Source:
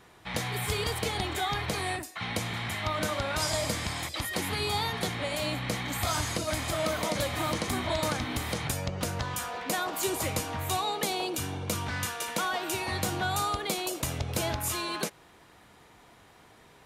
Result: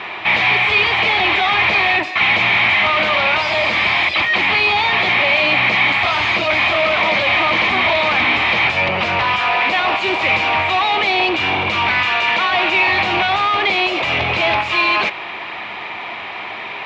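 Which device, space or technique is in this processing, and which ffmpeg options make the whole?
overdrive pedal into a guitar cabinet: -filter_complex "[0:a]asplit=2[a][b];[b]highpass=f=720:p=1,volume=32dB,asoftclip=type=tanh:threshold=-14dB[c];[a][c]amix=inputs=2:normalize=0,lowpass=f=4.1k:p=1,volume=-6dB,highpass=84,equalizer=f=150:t=q:w=4:g=-9,equalizer=f=270:t=q:w=4:g=-7,equalizer=f=480:t=q:w=4:g=-9,equalizer=f=1.5k:t=q:w=4:g=-7,equalizer=f=2.4k:t=q:w=4:g=9,lowpass=f=3.6k:w=0.5412,lowpass=f=3.6k:w=1.3066,volume=6dB"

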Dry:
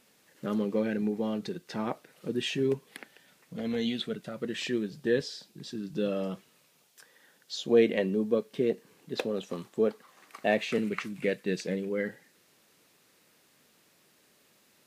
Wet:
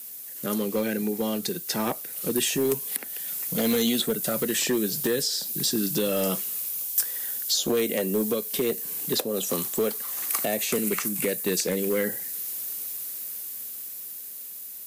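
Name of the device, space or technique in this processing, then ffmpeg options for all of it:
FM broadcast chain: -filter_complex "[0:a]highpass=76,dynaudnorm=f=750:g=7:m=10dB,acrossover=split=240|1400|5700[a][b][c][d];[a]acompressor=threshold=-37dB:ratio=4[e];[b]acompressor=threshold=-24dB:ratio=4[f];[c]acompressor=threshold=-42dB:ratio=4[g];[d]acompressor=threshold=-46dB:ratio=4[h];[e][f][g][h]amix=inputs=4:normalize=0,aemphasis=mode=production:type=50fm,alimiter=limit=-18.5dB:level=0:latency=1:release=431,asoftclip=type=hard:threshold=-22.5dB,lowpass=f=15k:w=0.5412,lowpass=f=15k:w=1.3066,aemphasis=mode=production:type=50fm,volume=4dB"

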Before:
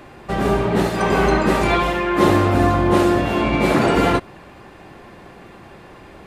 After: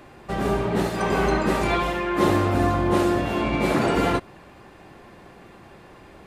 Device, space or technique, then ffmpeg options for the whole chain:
exciter from parts: -filter_complex "[0:a]asplit=2[a][b];[b]highpass=3.6k,asoftclip=type=tanh:threshold=-29dB,volume=-13dB[c];[a][c]amix=inputs=2:normalize=0,volume=-5dB"

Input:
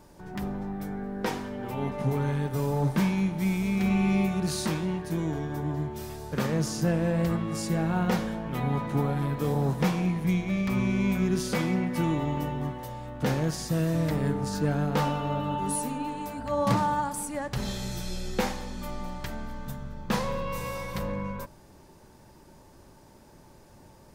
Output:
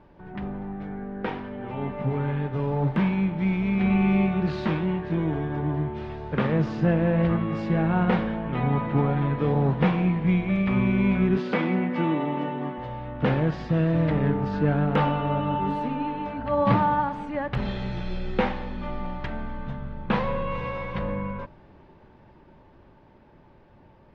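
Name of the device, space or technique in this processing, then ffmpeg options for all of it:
action camera in a waterproof case: -filter_complex "[0:a]asettb=1/sr,asplit=3[a][b][c];[a]atrim=end=11.374[d];[b]atrim=start=11.37:end=12.78,asetpts=PTS-STARTPTS,afade=t=in:d=0.004:c=qsin,afade=t=out:st=1.406:d=0.004:c=qsin,highpass=f=180:w=0.5412,highpass=f=180:w=1.3066[e];[c]atrim=start=12.776[f];[d][e]acrossfade=d=0.004:c1=hsin:c2=qsin[g];[g][f]acrossfade=d=0.004:c1=qsin:c2=hsin,lowpass=f=3k:w=0.5412,lowpass=f=3k:w=1.3066,dynaudnorm=f=500:g=13:m=4dB" -ar 48000 -c:a aac -b:a 48k

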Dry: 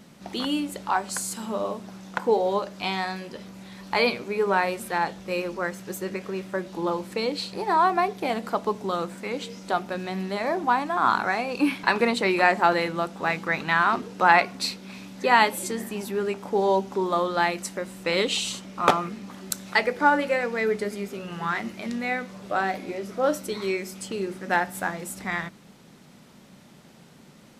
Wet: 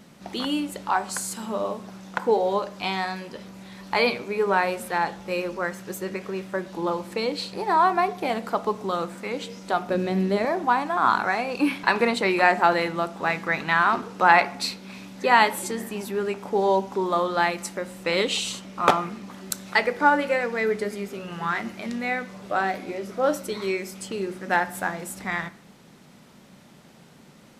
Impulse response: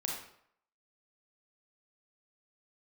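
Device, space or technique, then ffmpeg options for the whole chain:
filtered reverb send: -filter_complex "[0:a]asplit=2[a][b];[b]highpass=360,lowpass=3.3k[c];[1:a]atrim=start_sample=2205[d];[c][d]afir=irnorm=-1:irlink=0,volume=-16.5dB[e];[a][e]amix=inputs=2:normalize=0,asettb=1/sr,asplit=3[f][g][h];[f]atrim=end=9.894[i];[g]atrim=start=9.89:end=10.45,asetpts=PTS-STARTPTS,afade=t=in:d=0.004:c=qsin,afade=t=out:st=0.556:d=0.004:c=qsin,lowshelf=f=630:t=q:w=1.5:g=6.5[j];[h]atrim=start=10.446[k];[i][j]acrossfade=d=0.004:c1=hsin:c2=qsin[l];[l][k]acrossfade=d=0.004:c1=qsin:c2=hsin"

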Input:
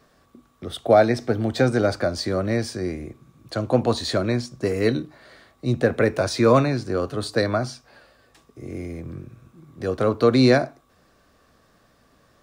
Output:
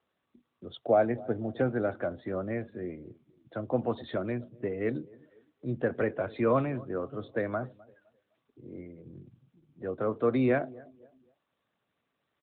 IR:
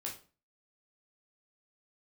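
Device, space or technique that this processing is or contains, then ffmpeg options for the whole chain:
mobile call with aggressive noise cancelling: -filter_complex "[0:a]asettb=1/sr,asplit=3[a][b][c];[a]atrim=end=0.774[d];[b]atrim=start=0.77:end=1.69,asetpts=PTS-STARTPTS,afade=t=in:d=0.004:c=qsin,afade=t=out:st=0.916:d=0.004:c=qsin,aemphasis=mode=reproduction:type=75fm[e];[c]atrim=start=1.686[f];[d][e]acrossfade=d=0.004:c1=hsin:c2=qsin[g];[g][f]acrossfade=d=0.004:c1=qsin:c2=hsin,asettb=1/sr,asplit=3[h][i][j];[h]atrim=end=8.684[k];[i]atrim=start=8.68:end=10.49,asetpts=PTS-STARTPTS,afade=t=in:d=0.004:c=qsin,afade=t=out:st=1.806:d=0.004:c=qsin,highpass=72[l];[j]atrim=start=10.486[m];[k][l]acrossfade=d=0.004:c1=hsin:c2=qsin[n];[n][m]acrossfade=d=0.004:c1=qsin:c2=hsin,highpass=f=110:p=1,asplit=2[o][p];[p]adelay=256,lowpass=f=4.7k:p=1,volume=-21dB,asplit=2[q][r];[r]adelay=256,lowpass=f=4.7k:p=1,volume=0.45,asplit=2[s][t];[t]adelay=256,lowpass=f=4.7k:p=1,volume=0.45[u];[o][q][s][u]amix=inputs=4:normalize=0,afftdn=nr=14:nf=-38,volume=-8.5dB" -ar 8000 -c:a libopencore_amrnb -b:a 12200

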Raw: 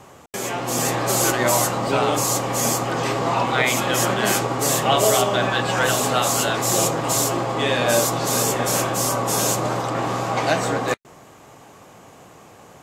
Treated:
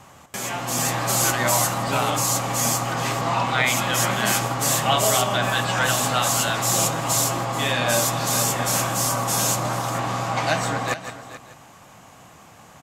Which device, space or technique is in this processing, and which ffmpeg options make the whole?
ducked delay: -filter_complex "[0:a]aecho=1:1:433:0.188,asplit=3[a][b][c];[b]adelay=164,volume=-8dB[d];[c]apad=whole_len=724496[e];[d][e]sidechaincompress=threshold=-33dB:ratio=8:attack=46:release=168[f];[a][f]amix=inputs=2:normalize=0,equalizer=f=410:w=1.5:g=-10"

